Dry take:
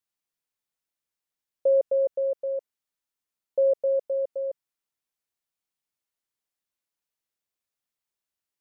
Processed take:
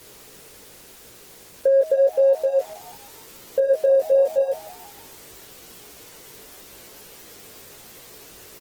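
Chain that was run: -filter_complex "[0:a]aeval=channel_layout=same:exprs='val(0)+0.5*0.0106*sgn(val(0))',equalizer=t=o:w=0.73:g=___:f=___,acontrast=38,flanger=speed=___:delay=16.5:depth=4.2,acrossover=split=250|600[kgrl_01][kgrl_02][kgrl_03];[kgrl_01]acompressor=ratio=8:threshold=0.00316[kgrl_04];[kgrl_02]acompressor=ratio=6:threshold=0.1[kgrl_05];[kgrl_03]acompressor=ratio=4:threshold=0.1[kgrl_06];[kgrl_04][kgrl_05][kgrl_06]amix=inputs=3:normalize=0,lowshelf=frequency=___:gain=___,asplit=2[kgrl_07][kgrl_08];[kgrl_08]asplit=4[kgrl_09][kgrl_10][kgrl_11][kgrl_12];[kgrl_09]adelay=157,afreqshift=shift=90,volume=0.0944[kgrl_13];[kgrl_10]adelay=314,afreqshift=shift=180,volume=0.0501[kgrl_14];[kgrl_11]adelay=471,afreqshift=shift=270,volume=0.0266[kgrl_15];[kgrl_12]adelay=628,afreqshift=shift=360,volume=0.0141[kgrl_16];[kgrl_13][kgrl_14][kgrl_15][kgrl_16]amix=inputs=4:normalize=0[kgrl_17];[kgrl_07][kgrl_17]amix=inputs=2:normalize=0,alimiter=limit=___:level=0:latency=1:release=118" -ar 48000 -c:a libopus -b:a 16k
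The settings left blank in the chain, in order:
10.5, 430, 0.86, 330, 6.5, 0.282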